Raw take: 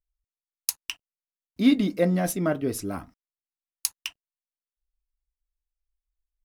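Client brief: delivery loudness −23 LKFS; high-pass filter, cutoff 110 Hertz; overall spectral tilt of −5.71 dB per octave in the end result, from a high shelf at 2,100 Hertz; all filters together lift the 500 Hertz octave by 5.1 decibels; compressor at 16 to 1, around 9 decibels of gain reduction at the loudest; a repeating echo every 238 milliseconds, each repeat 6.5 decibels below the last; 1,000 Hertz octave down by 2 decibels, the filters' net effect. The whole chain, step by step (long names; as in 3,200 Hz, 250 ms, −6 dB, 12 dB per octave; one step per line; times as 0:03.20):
high-pass filter 110 Hz
parametric band 500 Hz +8.5 dB
parametric band 1,000 Hz −8 dB
high-shelf EQ 2,100 Hz −7 dB
downward compressor 16 to 1, threshold −21 dBFS
repeating echo 238 ms, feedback 47%, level −6.5 dB
level +6.5 dB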